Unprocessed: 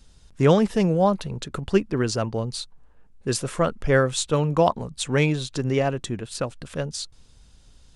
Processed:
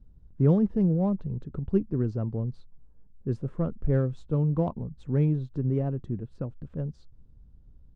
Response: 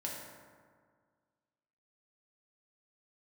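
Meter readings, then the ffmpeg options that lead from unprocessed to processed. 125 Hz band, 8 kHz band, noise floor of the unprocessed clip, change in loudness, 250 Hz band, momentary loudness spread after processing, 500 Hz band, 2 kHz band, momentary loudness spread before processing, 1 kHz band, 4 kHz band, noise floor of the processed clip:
-0.5 dB, under -35 dB, -54 dBFS, -4.5 dB, -2.5 dB, 12 LU, -9.5 dB, under -20 dB, 12 LU, -16.0 dB, under -30 dB, -55 dBFS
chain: -af "firequalizer=gain_entry='entry(140,0);entry(640,-14);entry(2400,-27)':delay=0.05:min_phase=1,adynamicsmooth=sensitivity=8:basefreq=3700"

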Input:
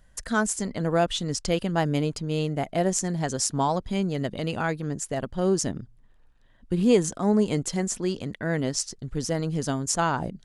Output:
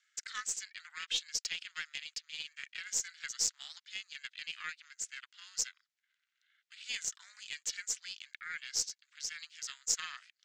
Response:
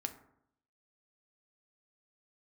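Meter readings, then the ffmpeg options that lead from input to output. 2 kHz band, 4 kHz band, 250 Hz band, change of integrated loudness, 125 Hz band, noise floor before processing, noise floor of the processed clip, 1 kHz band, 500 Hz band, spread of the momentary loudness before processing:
-7.5 dB, -3.0 dB, under -40 dB, -11.5 dB, under -40 dB, -57 dBFS, under -85 dBFS, -23.0 dB, -39.0 dB, 7 LU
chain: -af "asuperpass=centerf=3700:order=12:qfactor=0.63,aeval=exprs='val(0)*sin(2*PI*240*n/s)':c=same,aeval=exprs='0.251*(cos(1*acos(clip(val(0)/0.251,-1,1)))-cos(1*PI/2))+0.00501*(cos(8*acos(clip(val(0)/0.251,-1,1)))-cos(8*PI/2))':c=same"

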